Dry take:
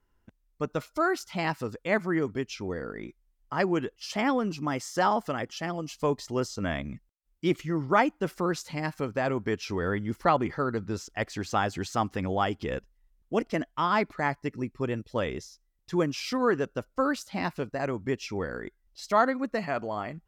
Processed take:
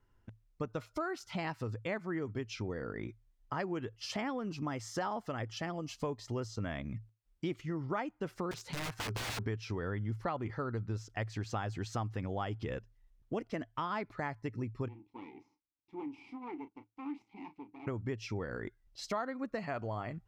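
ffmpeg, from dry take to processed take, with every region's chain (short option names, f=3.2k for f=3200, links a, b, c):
-filter_complex "[0:a]asettb=1/sr,asplit=3[a][b][c];[a]atrim=end=8.514[d];[b]atrim=start=8.51:end=9.46,asetpts=PTS-STARTPTS,afade=t=in:d=0.004:c=qsin,afade=t=out:st=0.946:d=0.004:c=qsin,equalizer=f=400:w=7.3:g=12.5,aeval=exprs='(mod(28.2*val(0)+1,2)-1)/28.2':c=same[e];[c]atrim=start=9.456[f];[d][e]acrossfade=d=0.004:c1=hsin:c2=qsin[g];[g][f]acrossfade=d=0.004:c1=qsin:c2=hsin,asettb=1/sr,asplit=3[h][i][j];[h]atrim=end=14.884[k];[i]atrim=start=14.88:end=17.87,asetpts=PTS-STARTPTS,afade=t=in:d=0.004:c=qsin,afade=t=out:st=2.986:d=0.004:c=qsin,aeval=exprs='max(val(0),0)':c=same,asplit=3[l][m][n];[l]bandpass=f=300:t=q:w=8,volume=0dB[o];[m]bandpass=f=870:t=q:w=8,volume=-6dB[p];[n]bandpass=f=2.24k:t=q:w=8,volume=-9dB[q];[o][p][q]amix=inputs=3:normalize=0,asplit=2[r][s];[s]adelay=33,volume=-11.5dB[t];[r][t]amix=inputs=2:normalize=0,atrim=end_sample=131859[u];[j]atrim=start=17.866[v];[k][u]acrossfade=d=0.004:c1=hsin:c2=qsin[w];[w][v]acrossfade=d=0.004:c1=qsin:c2=hsin,equalizer=f=110:t=o:w=0.25:g=14,acompressor=threshold=-35dB:ratio=4,highshelf=f=8.7k:g=-10.5"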